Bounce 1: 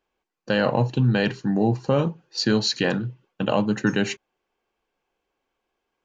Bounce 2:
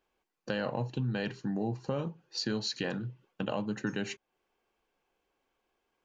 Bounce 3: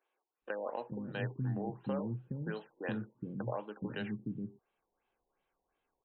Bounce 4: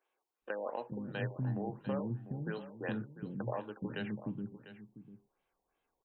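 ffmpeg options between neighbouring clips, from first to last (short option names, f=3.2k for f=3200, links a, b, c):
-af "acompressor=threshold=-38dB:ratio=2,volume=-1dB"
-filter_complex "[0:a]acrossover=split=320[a][b];[a]adelay=420[c];[c][b]amix=inputs=2:normalize=0,afftfilt=real='re*lt(b*sr/1024,990*pow(4200/990,0.5+0.5*sin(2*PI*2.8*pts/sr)))':imag='im*lt(b*sr/1024,990*pow(4200/990,0.5+0.5*sin(2*PI*2.8*pts/sr)))':win_size=1024:overlap=0.75,volume=-2.5dB"
-af "aecho=1:1:697:0.2"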